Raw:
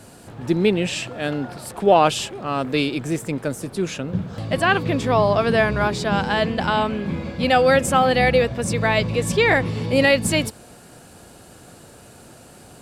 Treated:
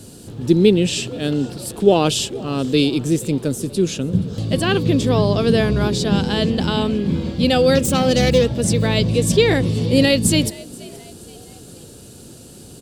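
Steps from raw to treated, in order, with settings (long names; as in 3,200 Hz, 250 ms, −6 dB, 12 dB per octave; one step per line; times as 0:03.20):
0:07.75–0:08.50: phase distortion by the signal itself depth 0.11 ms
flat-topped bell 1,200 Hz −12 dB 2.3 octaves
echo with shifted repeats 477 ms, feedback 49%, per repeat +66 Hz, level −22 dB
level +6 dB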